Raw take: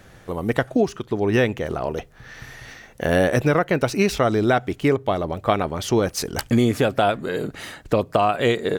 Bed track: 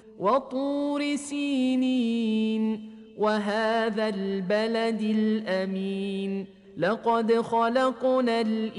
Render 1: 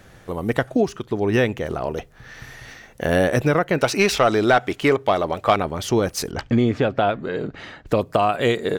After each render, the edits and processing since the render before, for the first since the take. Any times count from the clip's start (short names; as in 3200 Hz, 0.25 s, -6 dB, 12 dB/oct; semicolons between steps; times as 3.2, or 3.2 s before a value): 3.78–5.56 overdrive pedal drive 12 dB, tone 6600 Hz, clips at -3.5 dBFS; 6.31–7.87 air absorption 170 m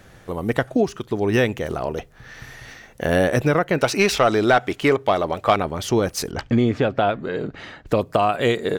0.96–1.85 high shelf 5200 Hz +5.5 dB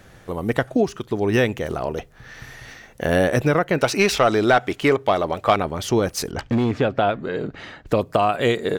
6.3–6.81 overloaded stage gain 15.5 dB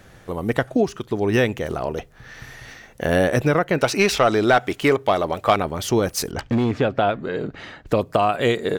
4.52–6.4 high shelf 9400 Hz +6.5 dB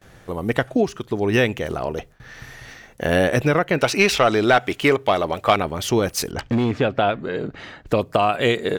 gate with hold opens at -38 dBFS; dynamic EQ 2700 Hz, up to +4 dB, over -37 dBFS, Q 1.4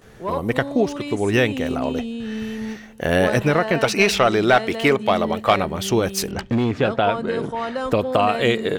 add bed track -3 dB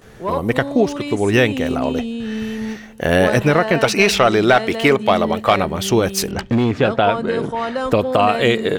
gain +3.5 dB; limiter -2 dBFS, peak gain reduction 2.5 dB